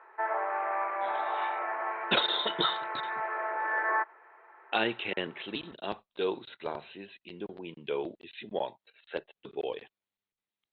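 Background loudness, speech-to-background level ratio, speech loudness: -32.5 LUFS, -1.5 dB, -34.0 LUFS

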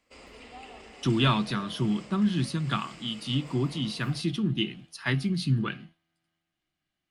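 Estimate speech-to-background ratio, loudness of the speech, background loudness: 19.5 dB, -28.5 LUFS, -48.0 LUFS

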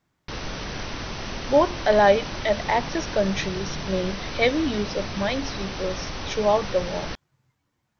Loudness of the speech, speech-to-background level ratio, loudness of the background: -24.5 LUFS, 8.0 dB, -32.5 LUFS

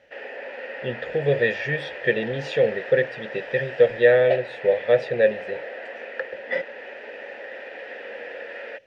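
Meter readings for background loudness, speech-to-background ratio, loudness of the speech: -35.5 LUFS, 13.0 dB, -22.5 LUFS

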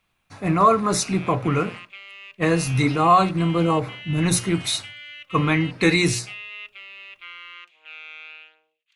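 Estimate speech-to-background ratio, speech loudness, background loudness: 17.0 dB, -21.0 LUFS, -38.0 LUFS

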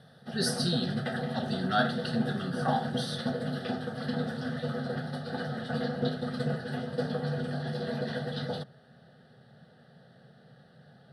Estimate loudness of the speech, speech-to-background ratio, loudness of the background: -33.0 LUFS, 1.0 dB, -34.0 LUFS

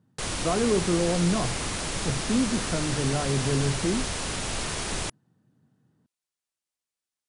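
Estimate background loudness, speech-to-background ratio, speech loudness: -30.0 LUFS, 2.0 dB, -28.0 LUFS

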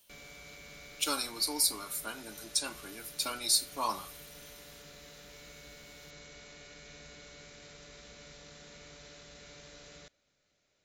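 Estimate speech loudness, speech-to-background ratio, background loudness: -31.5 LUFS, 19.0 dB, -50.5 LUFS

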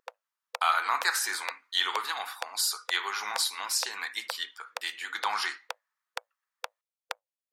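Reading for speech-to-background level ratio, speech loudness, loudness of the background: 13.5 dB, -30.0 LUFS, -43.5 LUFS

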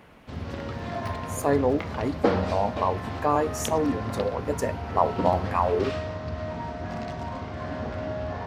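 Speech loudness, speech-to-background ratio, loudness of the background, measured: -27.0 LUFS, 5.5 dB, -32.5 LUFS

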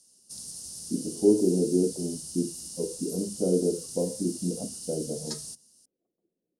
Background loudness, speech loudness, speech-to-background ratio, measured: -38.0 LUFS, -29.0 LUFS, 9.0 dB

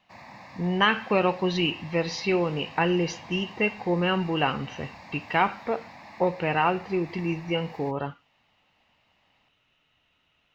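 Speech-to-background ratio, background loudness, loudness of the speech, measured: 19.5 dB, -46.0 LUFS, -26.5 LUFS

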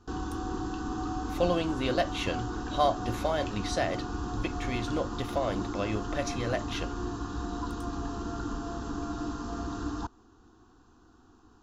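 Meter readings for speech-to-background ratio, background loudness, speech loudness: 3.0 dB, -35.5 LUFS, -32.5 LUFS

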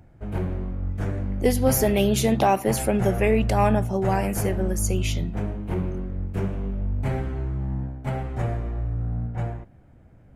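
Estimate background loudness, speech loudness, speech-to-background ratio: -29.0 LUFS, -23.5 LUFS, 5.5 dB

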